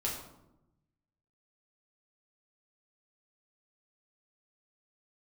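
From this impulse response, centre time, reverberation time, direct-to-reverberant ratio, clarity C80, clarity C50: 40 ms, 0.90 s, −4.0 dB, 7.5 dB, 5.0 dB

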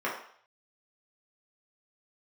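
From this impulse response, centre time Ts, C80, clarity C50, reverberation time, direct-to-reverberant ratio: 35 ms, 8.5 dB, 5.0 dB, 0.60 s, −6.0 dB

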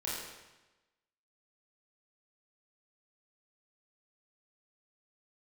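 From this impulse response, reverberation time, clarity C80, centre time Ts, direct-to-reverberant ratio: 1.1 s, 2.0 dB, 80 ms, −7.5 dB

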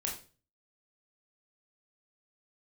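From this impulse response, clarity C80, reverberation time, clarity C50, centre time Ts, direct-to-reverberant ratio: 12.5 dB, 0.35 s, 7.5 dB, 27 ms, −2.0 dB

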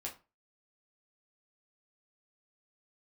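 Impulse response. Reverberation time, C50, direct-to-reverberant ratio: 0.30 s, 12.0 dB, −2.5 dB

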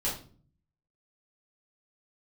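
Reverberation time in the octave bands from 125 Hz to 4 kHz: 0.90, 0.75, 0.50, 0.35, 0.35, 0.35 seconds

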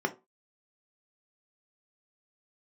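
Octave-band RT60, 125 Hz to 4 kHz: 0.25, 0.25, 0.30, 0.25, 0.20, 0.15 seconds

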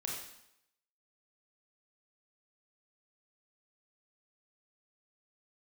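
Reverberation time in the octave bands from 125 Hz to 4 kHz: 0.75, 0.75, 0.80, 0.80, 0.75, 0.75 seconds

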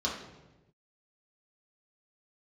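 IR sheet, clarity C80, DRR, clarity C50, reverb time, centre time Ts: 7.0 dB, −5.5 dB, 4.0 dB, 1.1 s, 42 ms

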